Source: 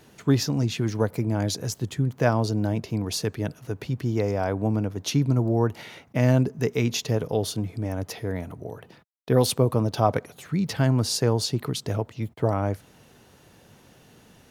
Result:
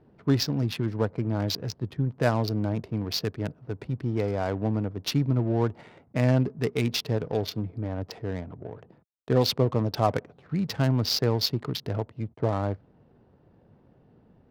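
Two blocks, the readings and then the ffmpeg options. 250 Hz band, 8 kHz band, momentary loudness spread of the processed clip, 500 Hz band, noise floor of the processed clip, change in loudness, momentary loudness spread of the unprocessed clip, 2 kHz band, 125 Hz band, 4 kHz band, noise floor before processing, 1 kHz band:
-2.5 dB, -8.0 dB, 10 LU, -2.5 dB, -61 dBFS, -2.5 dB, 10 LU, -2.5 dB, -2.5 dB, +1.0 dB, -55 dBFS, -2.5 dB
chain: -af "highshelf=f=6.5k:t=q:w=3:g=-9.5,adynamicsmooth=sensitivity=4:basefreq=720,volume=-2.5dB"

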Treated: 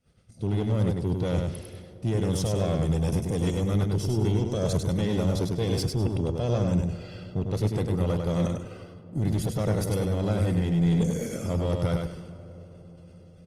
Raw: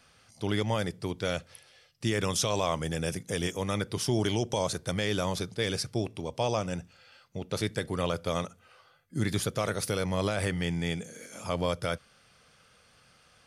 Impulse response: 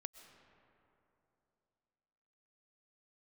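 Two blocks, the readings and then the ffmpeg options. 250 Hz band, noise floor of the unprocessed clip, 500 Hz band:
+6.5 dB, -62 dBFS, +2.0 dB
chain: -filter_complex "[0:a]agate=range=-26dB:threshold=-58dB:ratio=16:detection=peak,aecho=1:1:1.5:0.46,acontrast=29,lowshelf=f=550:t=q:w=1.5:g=13,areverse,acompressor=threshold=-21dB:ratio=6,areverse,asoftclip=type=tanh:threshold=-20dB,aecho=1:1:100|200|300|400:0.631|0.164|0.0427|0.0111,asplit=2[a][b];[1:a]atrim=start_sample=2205,asetrate=25137,aresample=44100[c];[b][c]afir=irnorm=-1:irlink=0,volume=-4dB[d];[a][d]amix=inputs=2:normalize=0,volume=-3.5dB" -ar 48000 -c:a libopus -b:a 24k

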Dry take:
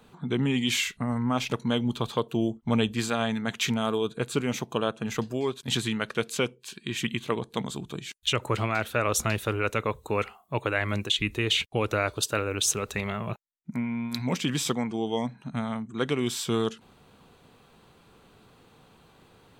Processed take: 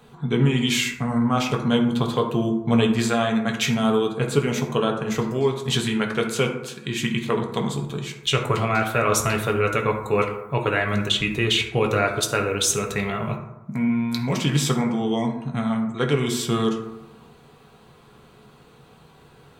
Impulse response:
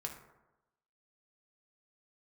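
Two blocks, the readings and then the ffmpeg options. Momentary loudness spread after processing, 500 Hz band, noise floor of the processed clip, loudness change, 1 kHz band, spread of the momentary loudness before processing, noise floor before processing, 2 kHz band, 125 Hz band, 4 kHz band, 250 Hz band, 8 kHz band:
6 LU, +6.5 dB, -51 dBFS, +5.5 dB, +6.0 dB, 7 LU, -59 dBFS, +5.0 dB, +7.0 dB, +4.0 dB, +6.5 dB, +4.0 dB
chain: -filter_complex "[1:a]atrim=start_sample=2205[a];[0:a][a]afir=irnorm=-1:irlink=0,volume=6.5dB"

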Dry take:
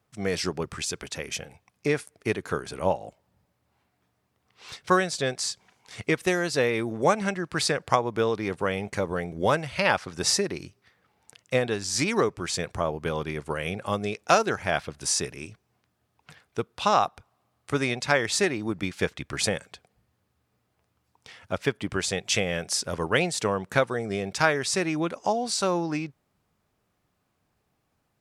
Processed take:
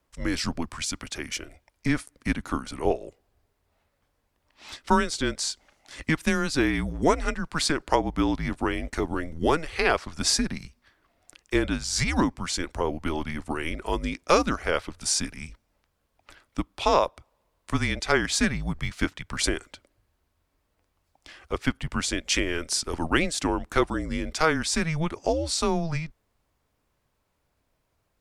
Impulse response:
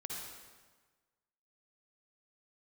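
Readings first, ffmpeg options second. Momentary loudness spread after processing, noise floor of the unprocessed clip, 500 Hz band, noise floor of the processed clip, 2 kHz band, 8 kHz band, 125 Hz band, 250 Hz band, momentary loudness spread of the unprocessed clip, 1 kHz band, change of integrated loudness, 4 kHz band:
9 LU, -75 dBFS, -2.0 dB, -74 dBFS, -0.5 dB, 0.0 dB, +1.0 dB, +3.0 dB, 9 LU, -1.0 dB, 0.0 dB, +0.5 dB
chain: -af "apsyclip=8dB,afreqshift=-160,volume=-7.5dB"

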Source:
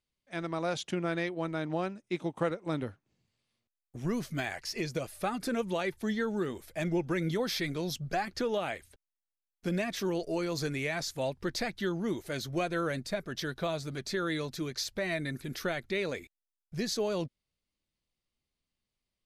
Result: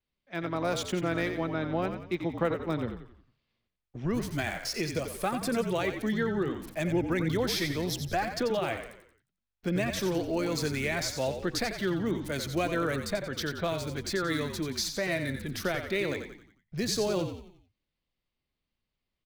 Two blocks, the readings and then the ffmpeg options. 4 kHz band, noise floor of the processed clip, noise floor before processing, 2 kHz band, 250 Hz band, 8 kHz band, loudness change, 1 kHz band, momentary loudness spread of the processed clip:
+3.0 dB, under -85 dBFS, under -85 dBFS, +2.5 dB, +3.0 dB, +5.0 dB, +3.0 dB, +2.5 dB, 5 LU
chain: -filter_complex "[0:a]adynamicequalizer=threshold=0.00178:dfrequency=9000:dqfactor=1.1:tfrequency=9000:tqfactor=1.1:attack=5:release=100:ratio=0.375:range=2:mode=boostabove:tftype=bell,acrossover=split=260|4900[a][b][c];[c]acrusher=bits=7:mix=0:aa=0.000001[d];[a][b][d]amix=inputs=3:normalize=0,asplit=6[e][f][g][h][i][j];[f]adelay=89,afreqshift=-49,volume=-8dB[k];[g]adelay=178,afreqshift=-98,volume=-15.1dB[l];[h]adelay=267,afreqshift=-147,volume=-22.3dB[m];[i]adelay=356,afreqshift=-196,volume=-29.4dB[n];[j]adelay=445,afreqshift=-245,volume=-36.5dB[o];[e][k][l][m][n][o]amix=inputs=6:normalize=0,volume=2dB"

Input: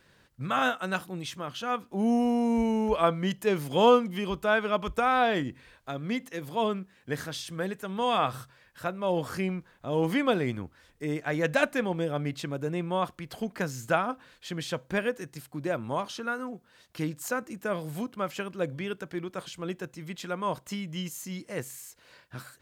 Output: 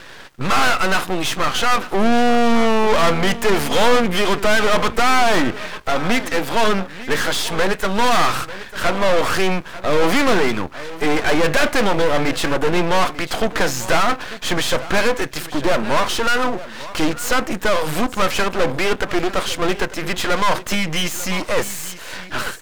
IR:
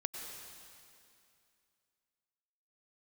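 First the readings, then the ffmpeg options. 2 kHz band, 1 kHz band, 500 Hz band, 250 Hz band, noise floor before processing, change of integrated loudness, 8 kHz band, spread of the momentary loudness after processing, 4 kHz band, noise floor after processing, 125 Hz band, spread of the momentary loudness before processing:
+13.5 dB, +11.5 dB, +10.0 dB, +8.5 dB, -62 dBFS, +11.0 dB, +17.0 dB, 8 LU, +15.5 dB, -36 dBFS, +7.5 dB, 13 LU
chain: -filter_complex "[0:a]asplit=2[a][b];[b]highpass=f=720:p=1,volume=31dB,asoftclip=type=tanh:threshold=-9.5dB[c];[a][c]amix=inputs=2:normalize=0,lowpass=f=2.7k:p=1,volume=-6dB,aecho=1:1:895:0.158,aeval=exprs='max(val(0),0)':c=same,volume=6dB"

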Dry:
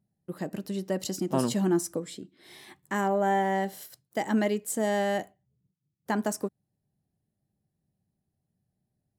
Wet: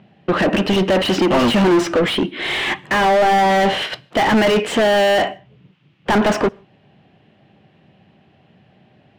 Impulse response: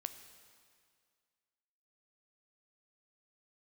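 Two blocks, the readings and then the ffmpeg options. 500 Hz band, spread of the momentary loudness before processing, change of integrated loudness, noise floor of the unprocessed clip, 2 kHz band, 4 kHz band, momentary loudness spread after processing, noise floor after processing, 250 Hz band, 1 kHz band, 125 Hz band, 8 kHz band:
+13.5 dB, 17 LU, +12.5 dB, -82 dBFS, +17.0 dB, +21.0 dB, 7 LU, -55 dBFS, +11.5 dB, +14.0 dB, +10.5 dB, +4.0 dB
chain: -filter_complex "[0:a]lowpass=f=2.9k:t=q:w=3.8,asplit=2[a][b];[b]highpass=f=720:p=1,volume=40dB,asoftclip=type=tanh:threshold=-11dB[c];[a][c]amix=inputs=2:normalize=0,lowpass=f=1.3k:p=1,volume=-6dB,asplit=2[d][e];[1:a]atrim=start_sample=2205,afade=t=out:st=0.28:d=0.01,atrim=end_sample=12789,asetrate=61740,aresample=44100[f];[e][f]afir=irnorm=-1:irlink=0,volume=-7.5dB[g];[d][g]amix=inputs=2:normalize=0,volume=3dB"

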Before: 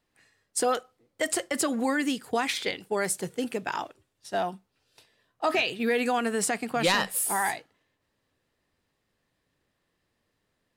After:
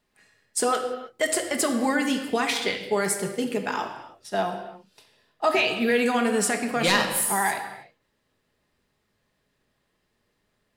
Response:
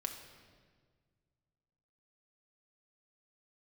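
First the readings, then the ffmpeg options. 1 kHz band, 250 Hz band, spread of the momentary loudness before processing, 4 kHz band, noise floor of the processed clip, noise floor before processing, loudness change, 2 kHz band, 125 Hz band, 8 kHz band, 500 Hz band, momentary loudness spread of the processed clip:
+3.0 dB, +4.0 dB, 8 LU, +3.5 dB, -74 dBFS, -78 dBFS, +3.5 dB, +3.5 dB, +4.5 dB, +3.0 dB, +3.5 dB, 10 LU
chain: -filter_complex "[1:a]atrim=start_sample=2205,afade=t=out:st=0.38:d=0.01,atrim=end_sample=17199[a];[0:a][a]afir=irnorm=-1:irlink=0,volume=4dB"

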